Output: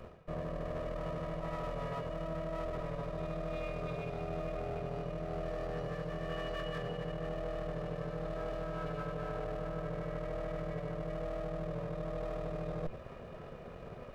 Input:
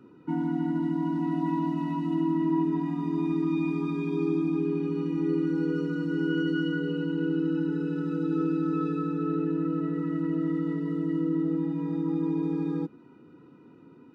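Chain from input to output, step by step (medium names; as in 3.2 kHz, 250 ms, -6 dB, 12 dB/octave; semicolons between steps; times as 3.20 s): comb filter that takes the minimum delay 1.7 ms; reverse; compression 12:1, threshold -44 dBFS, peak gain reduction 18.5 dB; reverse; trim +8.5 dB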